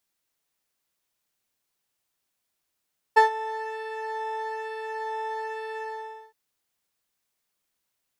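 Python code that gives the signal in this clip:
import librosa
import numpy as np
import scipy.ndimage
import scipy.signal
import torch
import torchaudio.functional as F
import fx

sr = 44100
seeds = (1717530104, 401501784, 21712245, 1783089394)

y = fx.sub_patch_pwm(sr, seeds[0], note=81, wave2='square', interval_st=12, detune_cents=16, level2_db=-7.5, sub_db=-8.5, noise_db=-29.5, kind='bandpass', cutoff_hz=320.0, q=0.74, env_oct=1.0, env_decay_s=0.19, env_sustain_pct=40, attack_ms=15.0, decay_s=0.12, sustain_db=-16.5, release_s=0.54, note_s=2.63, lfo_hz=1.1, width_pct=27, width_swing_pct=14)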